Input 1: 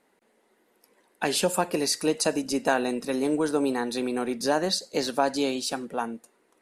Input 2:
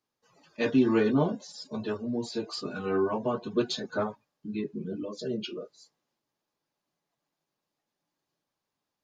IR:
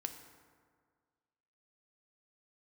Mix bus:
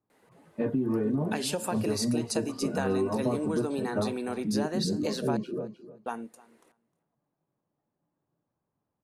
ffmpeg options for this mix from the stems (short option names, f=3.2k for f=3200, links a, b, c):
-filter_complex "[0:a]acompressor=threshold=-45dB:ratio=1.5,adelay=100,volume=2dB,asplit=3[a][b][c];[a]atrim=end=5.37,asetpts=PTS-STARTPTS,afade=t=out:st=5.366:d=0.004:c=hsin[d];[b]atrim=start=5.37:end=6.06,asetpts=PTS-STARTPTS,volume=0[e];[c]atrim=start=6.06,asetpts=PTS-STARTPTS,afade=t=in:d=0.004:c=hsin[f];[d][e][f]concat=n=3:v=0:a=1,asplit=2[g][h];[h]volume=-23dB[i];[1:a]lowpass=1.1k,equalizer=f=110:t=o:w=2.2:g=8.5,alimiter=limit=-20dB:level=0:latency=1:release=456,volume=2.5dB,asplit=2[j][k];[k]volume=-14.5dB[l];[i][l]amix=inputs=2:normalize=0,aecho=0:1:308|616|924:1|0.16|0.0256[m];[g][j][m]amix=inputs=3:normalize=0,acompressor=threshold=-24dB:ratio=3"